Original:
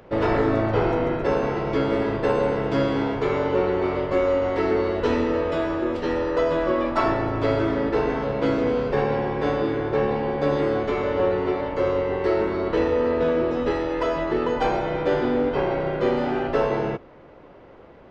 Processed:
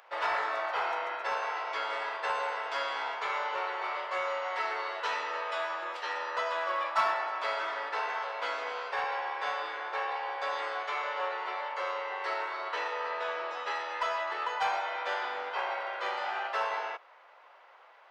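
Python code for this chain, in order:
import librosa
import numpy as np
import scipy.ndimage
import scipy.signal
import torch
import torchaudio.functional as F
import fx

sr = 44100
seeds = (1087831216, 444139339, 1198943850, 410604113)

p1 = scipy.signal.sosfilt(scipy.signal.butter(4, 820.0, 'highpass', fs=sr, output='sos'), x)
p2 = np.clip(10.0 ** (24.5 / 20.0) * p1, -1.0, 1.0) / 10.0 ** (24.5 / 20.0)
p3 = p1 + (p2 * librosa.db_to_amplitude(-5.0))
y = p3 * librosa.db_to_amplitude(-5.0)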